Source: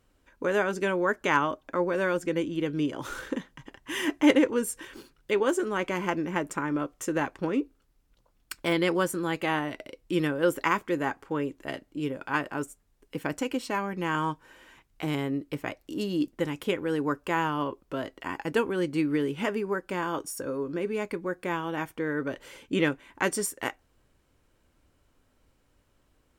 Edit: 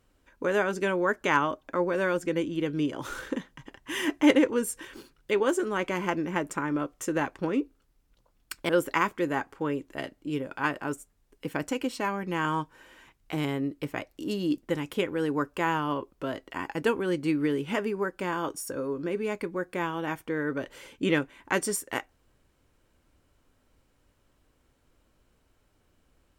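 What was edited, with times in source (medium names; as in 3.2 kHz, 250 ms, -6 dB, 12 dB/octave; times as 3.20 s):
8.69–10.39 s: delete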